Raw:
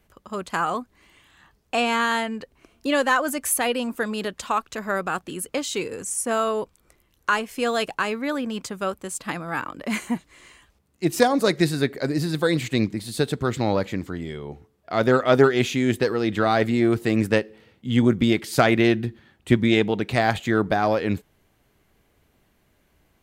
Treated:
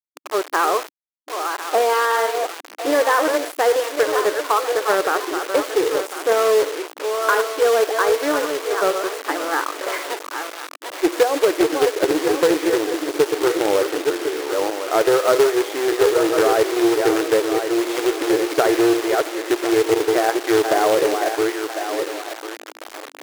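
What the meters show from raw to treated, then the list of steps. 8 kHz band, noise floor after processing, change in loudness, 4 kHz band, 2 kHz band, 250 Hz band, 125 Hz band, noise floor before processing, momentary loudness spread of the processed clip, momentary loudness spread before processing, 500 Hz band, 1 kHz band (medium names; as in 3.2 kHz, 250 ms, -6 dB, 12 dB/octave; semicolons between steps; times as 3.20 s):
+3.5 dB, -41 dBFS, +4.0 dB, +3.5 dB, +2.5 dB, +0.5 dB, -16.5 dB, -65 dBFS, 10 LU, 11 LU, +7.5 dB, +5.0 dB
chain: backward echo that repeats 525 ms, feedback 52%, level -8 dB; dynamic bell 440 Hz, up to +8 dB, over -36 dBFS, Q 2.8; compression 5:1, threshold -19 dBFS, peak gain reduction 12.5 dB; Savitzky-Golay filter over 41 samples; saturation -11.5 dBFS, distortion -24 dB; companded quantiser 4-bit; hum 60 Hz, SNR 22 dB; algorithmic reverb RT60 0.62 s, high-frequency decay 0.55×, pre-delay 25 ms, DRR 17 dB; bit crusher 6-bit; brick-wall FIR high-pass 290 Hz; loudspeaker Doppler distortion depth 0.2 ms; trim +7 dB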